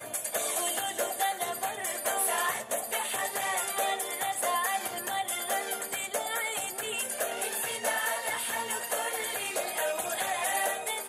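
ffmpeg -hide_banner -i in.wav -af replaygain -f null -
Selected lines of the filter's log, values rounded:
track_gain = +13.8 dB
track_peak = 0.112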